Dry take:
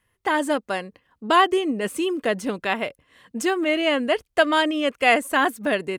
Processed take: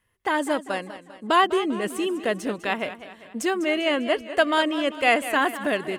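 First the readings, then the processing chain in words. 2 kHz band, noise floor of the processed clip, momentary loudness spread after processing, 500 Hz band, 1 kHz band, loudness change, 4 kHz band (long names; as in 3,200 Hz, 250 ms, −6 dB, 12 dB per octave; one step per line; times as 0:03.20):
−2.0 dB, −51 dBFS, 11 LU, −1.5 dB, −2.0 dB, −2.0 dB, −2.0 dB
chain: feedback echo with a swinging delay time 198 ms, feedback 50%, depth 109 cents, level −13.5 dB
level −2 dB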